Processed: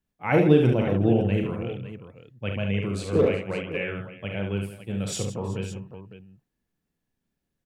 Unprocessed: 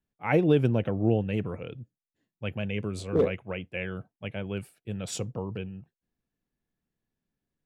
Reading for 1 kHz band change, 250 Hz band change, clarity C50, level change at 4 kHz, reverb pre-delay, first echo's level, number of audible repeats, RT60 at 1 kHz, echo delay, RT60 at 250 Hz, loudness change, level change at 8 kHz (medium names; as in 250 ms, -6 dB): +4.0 dB, +4.5 dB, no reverb, +4.0 dB, no reverb, -6.5 dB, 5, no reverb, 40 ms, no reverb, +4.0 dB, +4.0 dB